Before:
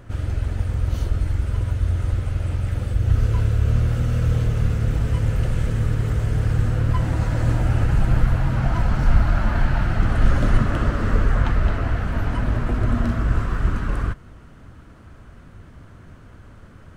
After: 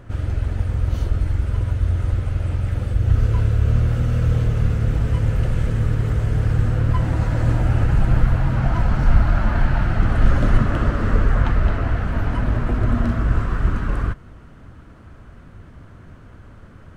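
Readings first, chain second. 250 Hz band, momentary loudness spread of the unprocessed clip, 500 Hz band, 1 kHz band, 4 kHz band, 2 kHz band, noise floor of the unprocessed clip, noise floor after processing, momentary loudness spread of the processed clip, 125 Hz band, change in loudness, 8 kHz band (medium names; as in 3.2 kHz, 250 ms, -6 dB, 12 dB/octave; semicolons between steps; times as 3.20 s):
+1.5 dB, 5 LU, +1.5 dB, +1.0 dB, -1.0 dB, +0.5 dB, -45 dBFS, -43 dBFS, 5 LU, +1.5 dB, +1.5 dB, no reading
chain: treble shelf 4 kHz -5.5 dB; trim +1.5 dB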